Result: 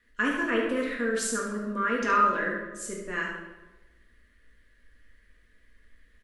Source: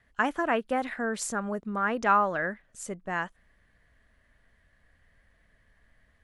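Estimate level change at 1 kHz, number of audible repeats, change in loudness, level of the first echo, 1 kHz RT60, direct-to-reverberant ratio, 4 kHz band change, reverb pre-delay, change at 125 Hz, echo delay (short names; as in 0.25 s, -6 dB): -0.5 dB, 1, +1.5 dB, -6.5 dB, 1.0 s, -3.5 dB, +4.5 dB, 4 ms, -1.5 dB, 72 ms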